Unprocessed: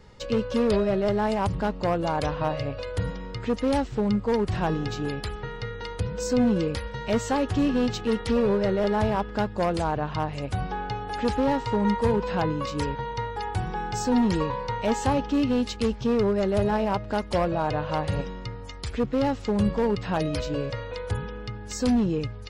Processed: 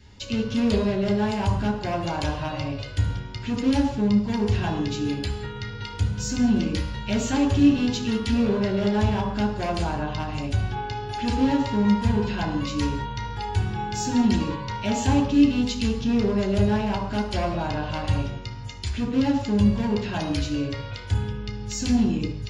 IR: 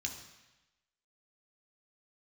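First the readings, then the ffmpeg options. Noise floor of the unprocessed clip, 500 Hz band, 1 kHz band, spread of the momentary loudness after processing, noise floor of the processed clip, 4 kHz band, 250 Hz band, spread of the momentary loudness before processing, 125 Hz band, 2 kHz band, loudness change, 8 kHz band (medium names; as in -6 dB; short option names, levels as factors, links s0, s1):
-38 dBFS, -3.5 dB, -1.5 dB, 9 LU, -35 dBFS, +4.0 dB, +3.5 dB, 9 LU, +4.0 dB, +1.0 dB, +1.5 dB, +4.0 dB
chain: -filter_complex "[1:a]atrim=start_sample=2205,afade=t=out:st=0.27:d=0.01,atrim=end_sample=12348[s0];[0:a][s0]afir=irnorm=-1:irlink=0,volume=1.12"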